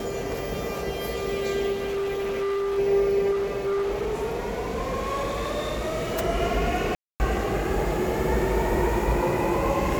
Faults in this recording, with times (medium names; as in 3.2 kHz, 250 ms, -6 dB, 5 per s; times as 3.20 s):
1.72–2.79 s: clipped -24.5 dBFS
3.31–6.21 s: clipped -23 dBFS
6.95–7.20 s: dropout 249 ms